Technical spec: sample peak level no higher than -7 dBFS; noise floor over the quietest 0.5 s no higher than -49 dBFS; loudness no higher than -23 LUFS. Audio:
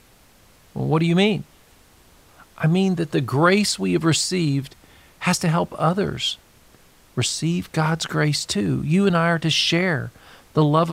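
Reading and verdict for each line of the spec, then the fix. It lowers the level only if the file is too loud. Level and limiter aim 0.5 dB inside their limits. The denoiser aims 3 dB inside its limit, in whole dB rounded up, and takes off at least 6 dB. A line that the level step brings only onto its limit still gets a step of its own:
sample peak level -4.5 dBFS: fail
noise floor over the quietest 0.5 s -53 dBFS: OK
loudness -21.0 LUFS: fail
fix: gain -2.5 dB; limiter -7.5 dBFS

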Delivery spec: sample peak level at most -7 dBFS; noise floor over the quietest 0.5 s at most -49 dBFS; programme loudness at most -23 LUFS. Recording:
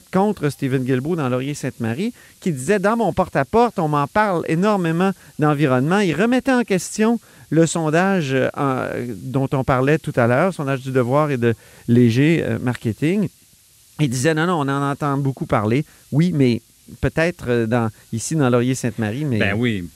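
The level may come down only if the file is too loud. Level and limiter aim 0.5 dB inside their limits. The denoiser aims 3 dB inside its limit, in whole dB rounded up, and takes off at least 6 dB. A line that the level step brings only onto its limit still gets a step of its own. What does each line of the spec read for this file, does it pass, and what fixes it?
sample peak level -4.0 dBFS: fail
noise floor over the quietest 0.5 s -52 dBFS: OK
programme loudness -19.5 LUFS: fail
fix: gain -4 dB

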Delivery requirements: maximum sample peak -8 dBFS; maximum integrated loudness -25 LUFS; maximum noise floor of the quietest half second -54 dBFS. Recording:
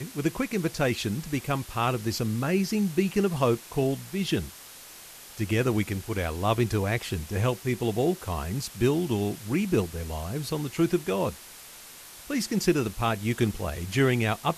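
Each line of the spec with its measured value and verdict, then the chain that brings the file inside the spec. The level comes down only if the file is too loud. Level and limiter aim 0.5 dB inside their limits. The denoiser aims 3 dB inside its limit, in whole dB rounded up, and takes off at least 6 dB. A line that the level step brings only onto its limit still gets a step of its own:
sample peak -10.0 dBFS: OK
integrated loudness -27.5 LUFS: OK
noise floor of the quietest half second -46 dBFS: fail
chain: denoiser 11 dB, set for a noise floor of -46 dBFS

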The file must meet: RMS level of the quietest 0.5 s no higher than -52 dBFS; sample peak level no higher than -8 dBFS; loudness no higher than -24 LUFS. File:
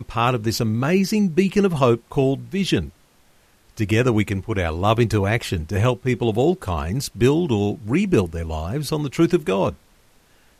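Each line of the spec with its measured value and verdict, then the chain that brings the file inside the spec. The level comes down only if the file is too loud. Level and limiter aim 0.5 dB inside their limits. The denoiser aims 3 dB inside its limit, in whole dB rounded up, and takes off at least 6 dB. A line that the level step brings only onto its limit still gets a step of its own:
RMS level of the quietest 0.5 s -56 dBFS: OK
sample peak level -3.5 dBFS: fail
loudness -21.0 LUFS: fail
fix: gain -3.5 dB; limiter -8.5 dBFS

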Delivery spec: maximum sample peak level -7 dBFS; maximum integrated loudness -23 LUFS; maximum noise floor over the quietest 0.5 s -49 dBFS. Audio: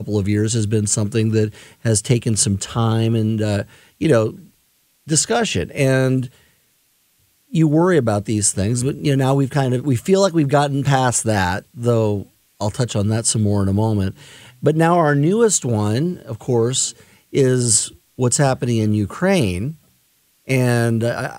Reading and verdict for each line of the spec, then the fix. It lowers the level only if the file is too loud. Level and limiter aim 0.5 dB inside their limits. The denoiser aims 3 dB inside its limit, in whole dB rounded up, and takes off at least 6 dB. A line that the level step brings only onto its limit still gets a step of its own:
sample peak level -2.5 dBFS: fail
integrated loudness -18.0 LUFS: fail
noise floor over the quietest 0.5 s -61 dBFS: OK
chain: gain -5.5 dB

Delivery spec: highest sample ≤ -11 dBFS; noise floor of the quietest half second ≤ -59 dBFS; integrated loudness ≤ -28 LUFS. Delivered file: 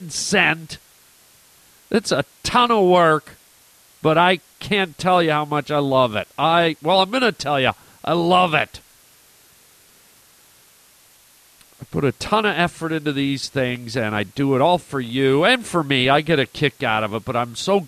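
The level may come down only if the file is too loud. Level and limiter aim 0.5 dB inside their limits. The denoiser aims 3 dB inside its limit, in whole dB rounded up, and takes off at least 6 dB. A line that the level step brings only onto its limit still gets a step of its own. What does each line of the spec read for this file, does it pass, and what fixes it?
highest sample -4.0 dBFS: fail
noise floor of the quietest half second -52 dBFS: fail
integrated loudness -19.0 LUFS: fail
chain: gain -9.5 dB

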